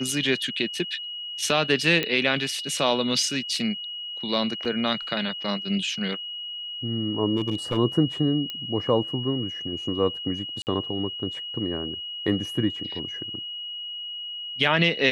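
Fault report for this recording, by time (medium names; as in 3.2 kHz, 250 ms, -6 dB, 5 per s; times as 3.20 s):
whine 2.9 kHz -32 dBFS
2.03 s: pop -11 dBFS
4.65 s: dropout 4.3 ms
7.36–7.78 s: clipped -19.5 dBFS
8.50 s: pop -18 dBFS
10.62–10.67 s: dropout 49 ms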